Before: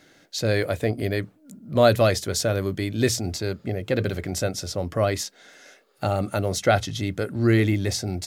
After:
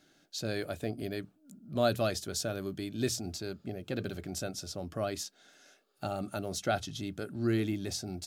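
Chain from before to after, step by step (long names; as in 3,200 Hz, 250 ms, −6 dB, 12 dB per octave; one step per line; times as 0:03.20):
thirty-one-band graphic EQ 100 Hz −9 dB, 500 Hz −8 dB, 1,000 Hz −6 dB, 2,000 Hz −10 dB
level −8.5 dB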